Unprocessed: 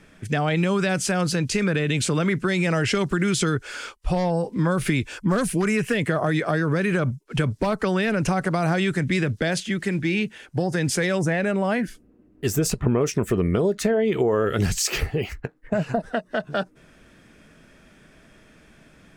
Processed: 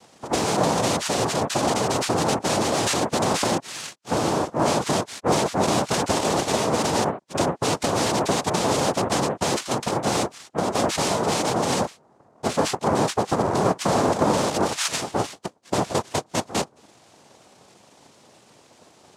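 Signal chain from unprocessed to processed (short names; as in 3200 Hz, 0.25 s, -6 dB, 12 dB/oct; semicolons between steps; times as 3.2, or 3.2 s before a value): 2.54–2.97 infinite clipping; noise vocoder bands 2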